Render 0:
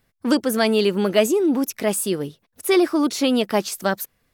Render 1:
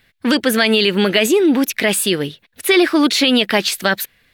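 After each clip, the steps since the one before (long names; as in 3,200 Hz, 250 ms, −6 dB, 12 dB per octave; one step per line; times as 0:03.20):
flat-topped bell 2,600 Hz +11 dB
boost into a limiter +8.5 dB
level −3 dB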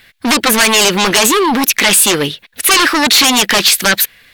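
sine wavefolder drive 10 dB, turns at −3.5 dBFS
tilt shelving filter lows −4 dB, about 640 Hz
level −4.5 dB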